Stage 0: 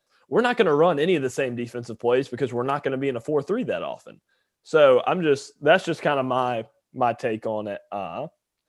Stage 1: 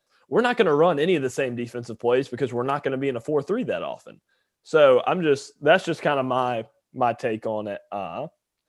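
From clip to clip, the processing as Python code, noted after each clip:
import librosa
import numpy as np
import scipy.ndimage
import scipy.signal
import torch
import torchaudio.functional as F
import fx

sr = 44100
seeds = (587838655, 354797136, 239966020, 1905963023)

y = x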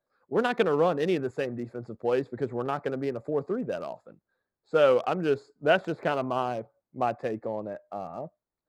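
y = fx.wiener(x, sr, points=15)
y = y * 10.0 ** (-5.0 / 20.0)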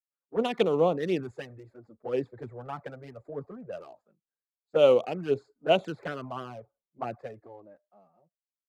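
y = fx.fade_out_tail(x, sr, length_s=1.52)
y = fx.env_flanger(y, sr, rest_ms=7.3, full_db=-20.5)
y = fx.band_widen(y, sr, depth_pct=70)
y = y * 10.0 ** (-2.0 / 20.0)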